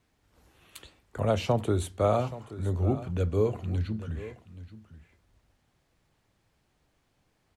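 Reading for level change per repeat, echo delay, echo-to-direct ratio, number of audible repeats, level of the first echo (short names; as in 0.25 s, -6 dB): no steady repeat, 0.827 s, -15.5 dB, 1, -15.5 dB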